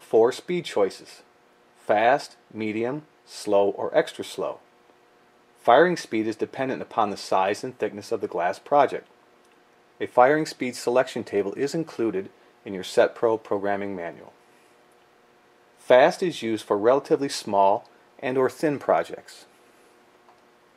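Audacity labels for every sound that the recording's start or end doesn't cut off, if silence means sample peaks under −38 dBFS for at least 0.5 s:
1.880000	4.560000	sound
5.650000	9.020000	sound
10.010000	14.290000	sound
15.870000	19.430000	sound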